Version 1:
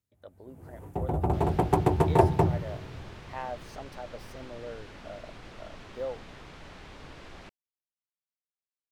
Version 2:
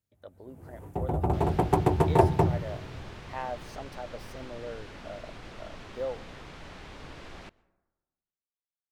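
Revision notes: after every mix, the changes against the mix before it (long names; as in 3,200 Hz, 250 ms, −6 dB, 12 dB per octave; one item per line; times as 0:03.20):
reverb: on, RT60 1.2 s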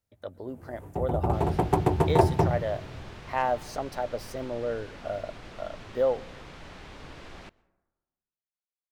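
speech +9.0 dB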